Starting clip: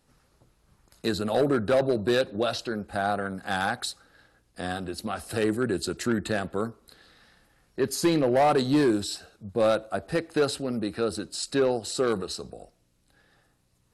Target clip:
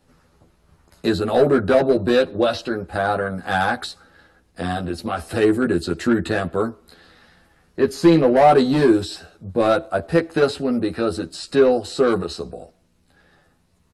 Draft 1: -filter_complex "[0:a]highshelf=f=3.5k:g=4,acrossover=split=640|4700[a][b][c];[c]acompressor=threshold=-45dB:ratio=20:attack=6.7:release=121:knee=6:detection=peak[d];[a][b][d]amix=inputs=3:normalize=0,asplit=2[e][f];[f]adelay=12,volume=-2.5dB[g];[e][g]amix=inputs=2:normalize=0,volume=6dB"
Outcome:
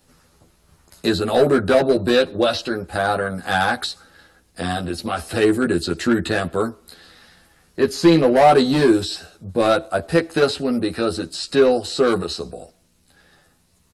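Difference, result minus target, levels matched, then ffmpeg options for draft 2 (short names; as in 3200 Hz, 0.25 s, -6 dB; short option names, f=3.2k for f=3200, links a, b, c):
4000 Hz band +4.5 dB
-filter_complex "[0:a]highshelf=f=3.5k:g=-7,acrossover=split=640|4700[a][b][c];[c]acompressor=threshold=-45dB:ratio=20:attack=6.7:release=121:knee=6:detection=peak[d];[a][b][d]amix=inputs=3:normalize=0,asplit=2[e][f];[f]adelay=12,volume=-2.5dB[g];[e][g]amix=inputs=2:normalize=0,volume=6dB"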